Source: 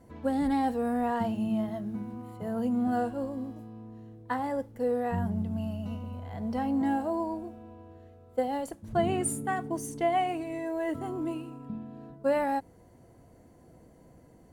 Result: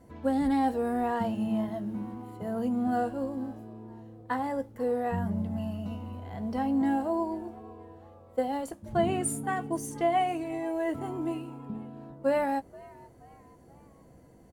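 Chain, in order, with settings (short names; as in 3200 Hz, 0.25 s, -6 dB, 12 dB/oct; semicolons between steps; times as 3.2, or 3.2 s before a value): doubler 15 ms -12.5 dB; on a send: frequency-shifting echo 0.479 s, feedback 44%, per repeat +92 Hz, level -22.5 dB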